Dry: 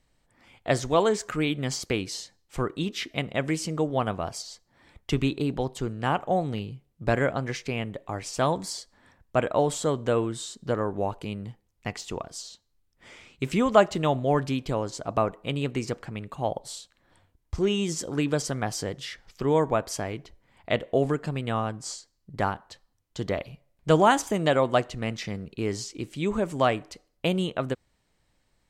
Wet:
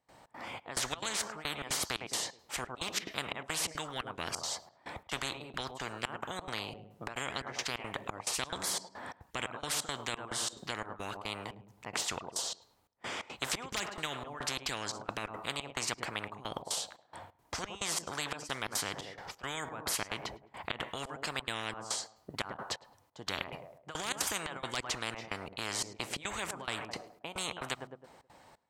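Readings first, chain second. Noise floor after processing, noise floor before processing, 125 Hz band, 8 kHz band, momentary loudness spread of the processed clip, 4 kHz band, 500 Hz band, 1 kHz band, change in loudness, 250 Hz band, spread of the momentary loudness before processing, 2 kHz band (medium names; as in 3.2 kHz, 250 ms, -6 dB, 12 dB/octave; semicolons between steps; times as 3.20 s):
-67 dBFS, -71 dBFS, -17.5 dB, +1.0 dB, 9 LU, -0.5 dB, -17.5 dB, -10.5 dB, -9.5 dB, -17.5 dB, 14 LU, -4.0 dB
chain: one-sided wavefolder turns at -10 dBFS; high-pass 94 Hz; peaking EQ 840 Hz +13.5 dB 1.4 oct; peak limiter -7.5 dBFS, peak gain reduction 10 dB; trance gate ".xx.xxx." 176 bpm -24 dB; on a send: filtered feedback delay 106 ms, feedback 36%, low-pass 3.4 kHz, level -23.5 dB; on the sum: spectrum-flattening compressor 10:1; trim -8 dB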